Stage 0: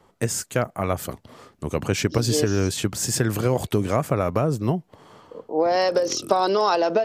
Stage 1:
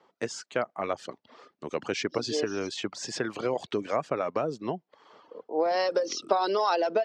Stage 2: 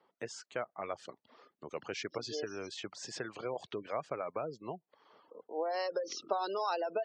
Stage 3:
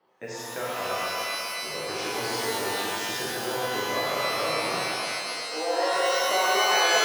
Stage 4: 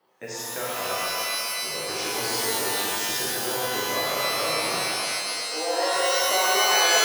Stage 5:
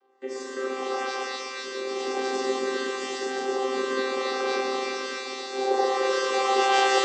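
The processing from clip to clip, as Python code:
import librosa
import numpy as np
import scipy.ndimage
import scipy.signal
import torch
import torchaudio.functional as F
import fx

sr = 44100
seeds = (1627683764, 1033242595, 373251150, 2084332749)

y1 = scipy.signal.sosfilt(scipy.signal.butter(2, 300.0, 'highpass', fs=sr, output='sos'), x)
y1 = fx.dereverb_blind(y1, sr, rt60_s=0.61)
y1 = scipy.signal.sosfilt(scipy.signal.butter(4, 5600.0, 'lowpass', fs=sr, output='sos'), y1)
y1 = F.gain(torch.from_numpy(y1), -4.0).numpy()
y2 = fx.spec_gate(y1, sr, threshold_db=-30, keep='strong')
y2 = fx.dynamic_eq(y2, sr, hz=250.0, q=1.4, threshold_db=-44.0, ratio=4.0, max_db=-6)
y2 = F.gain(torch.from_numpy(y2), -8.0).numpy()
y3 = fx.mod_noise(y2, sr, seeds[0], snr_db=31)
y3 = fx.echo_banded(y3, sr, ms=129, feedback_pct=84, hz=850.0, wet_db=-6.0)
y3 = fx.rev_shimmer(y3, sr, seeds[1], rt60_s=2.0, semitones=12, shimmer_db=-2, drr_db=-7.0)
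y4 = fx.high_shelf(y3, sr, hz=5100.0, db=10.0)
y5 = fx.chord_vocoder(y4, sr, chord='bare fifth', root=60)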